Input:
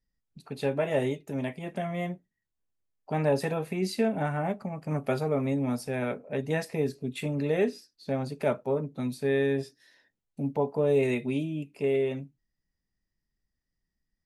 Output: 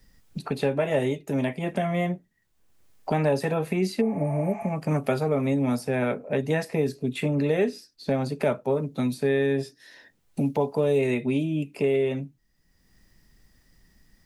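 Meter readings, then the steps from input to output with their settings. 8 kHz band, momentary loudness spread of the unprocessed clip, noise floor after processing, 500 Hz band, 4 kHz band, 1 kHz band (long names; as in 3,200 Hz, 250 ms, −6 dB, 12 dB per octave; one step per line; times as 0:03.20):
+2.5 dB, 8 LU, −66 dBFS, +3.0 dB, +3.5 dB, +3.0 dB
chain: healed spectral selection 0:04.03–0:04.65, 610–8,400 Hz after
multiband upward and downward compressor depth 70%
level +3.5 dB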